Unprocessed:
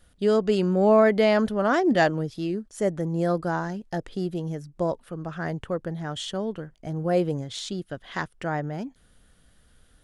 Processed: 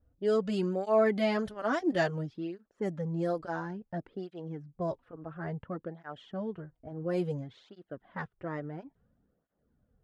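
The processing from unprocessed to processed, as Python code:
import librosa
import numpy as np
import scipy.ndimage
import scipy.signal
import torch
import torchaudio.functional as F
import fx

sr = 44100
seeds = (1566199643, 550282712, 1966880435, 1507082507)

y = fx.env_lowpass(x, sr, base_hz=620.0, full_db=-18.5)
y = fx.flanger_cancel(y, sr, hz=0.58, depth_ms=5.8)
y = y * 10.0 ** (-5.0 / 20.0)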